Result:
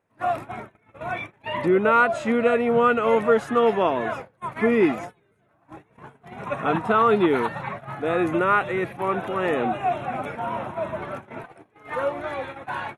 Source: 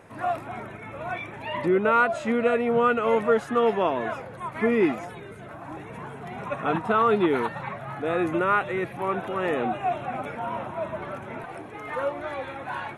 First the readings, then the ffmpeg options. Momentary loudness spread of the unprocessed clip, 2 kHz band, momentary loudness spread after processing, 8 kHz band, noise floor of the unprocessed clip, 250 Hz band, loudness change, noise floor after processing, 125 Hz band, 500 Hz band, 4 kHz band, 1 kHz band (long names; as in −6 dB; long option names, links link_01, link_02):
16 LU, +2.5 dB, 14 LU, can't be measured, −41 dBFS, +2.5 dB, +2.5 dB, −64 dBFS, +2.0 dB, +2.5 dB, +2.5 dB, +2.5 dB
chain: -af "agate=range=-26dB:threshold=-35dB:ratio=16:detection=peak,volume=2.5dB"